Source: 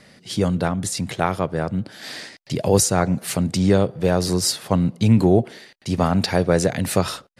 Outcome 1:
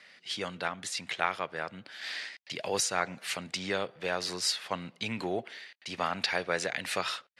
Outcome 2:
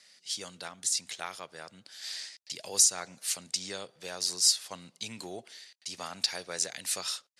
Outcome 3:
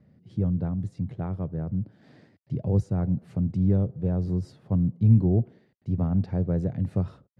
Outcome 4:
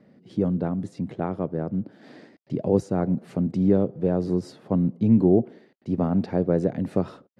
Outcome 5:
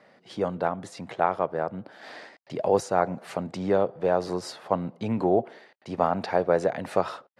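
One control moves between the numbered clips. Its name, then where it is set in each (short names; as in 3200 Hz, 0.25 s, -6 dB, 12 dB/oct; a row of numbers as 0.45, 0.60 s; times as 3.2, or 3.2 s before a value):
band-pass, frequency: 2400, 6300, 100, 270, 780 Hz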